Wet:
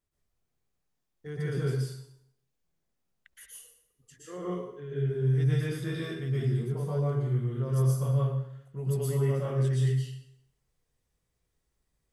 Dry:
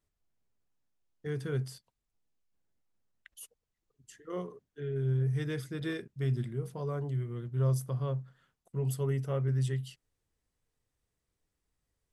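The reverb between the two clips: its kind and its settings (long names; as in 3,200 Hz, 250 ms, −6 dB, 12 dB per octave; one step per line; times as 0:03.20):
dense smooth reverb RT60 0.72 s, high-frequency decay 0.9×, pre-delay 105 ms, DRR −6.5 dB
level −4 dB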